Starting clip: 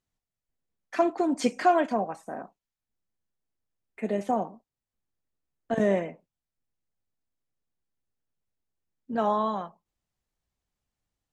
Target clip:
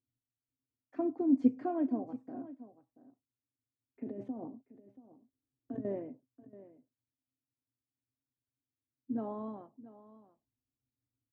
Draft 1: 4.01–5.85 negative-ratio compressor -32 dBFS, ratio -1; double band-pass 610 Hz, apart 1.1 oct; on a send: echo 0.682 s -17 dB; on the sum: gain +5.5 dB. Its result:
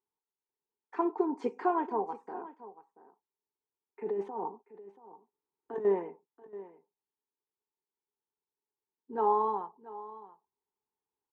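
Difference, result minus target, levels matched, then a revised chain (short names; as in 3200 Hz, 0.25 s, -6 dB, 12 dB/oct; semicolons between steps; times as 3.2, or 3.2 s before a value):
250 Hz band -7.5 dB
4.01–5.85 negative-ratio compressor -32 dBFS, ratio -1; double band-pass 180 Hz, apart 1.1 oct; on a send: echo 0.682 s -17 dB; on the sum: gain +5.5 dB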